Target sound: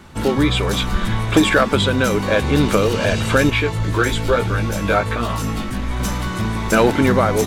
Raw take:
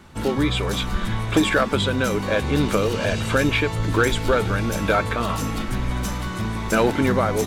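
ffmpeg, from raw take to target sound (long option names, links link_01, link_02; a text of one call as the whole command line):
ffmpeg -i in.wav -filter_complex "[0:a]asettb=1/sr,asplit=3[link_01][link_02][link_03];[link_01]atrim=end=3.504[link_04];[link_02]atrim=start=3.5:end=6,asetpts=PTS-STARTPTS,afade=type=in:duration=0.004:curve=qsin,afade=type=out:start_time=2.496:duration=0.004:curve=qsin,flanger=delay=17:depth=3:speed=1.1[link_05];[link_03]atrim=start=5.996[link_06];[link_04][link_05]acrossfade=duration=0.004:curve1=hsin:curve2=qsin[link_07];[link_07][link_06]acrossfade=duration=0.004:curve1=qsin:curve2=hsin,volume=4.5dB" out.wav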